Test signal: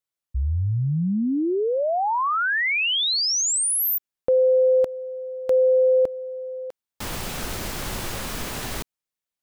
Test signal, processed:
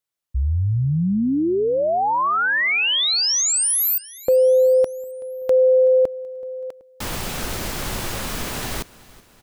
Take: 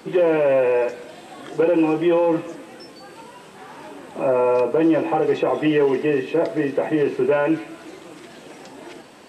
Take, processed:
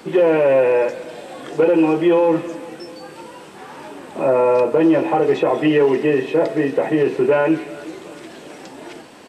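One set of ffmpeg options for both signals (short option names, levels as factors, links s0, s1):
-af "aecho=1:1:378|756|1134|1512:0.0841|0.0463|0.0255|0.014,volume=1.41"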